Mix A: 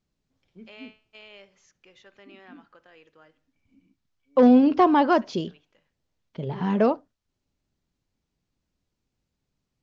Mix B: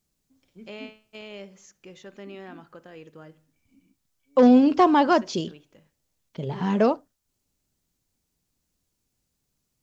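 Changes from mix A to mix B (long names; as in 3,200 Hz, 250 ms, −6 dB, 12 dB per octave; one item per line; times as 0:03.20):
first voice: remove high-pass filter 1,400 Hz 6 dB per octave
master: remove high-frequency loss of the air 140 metres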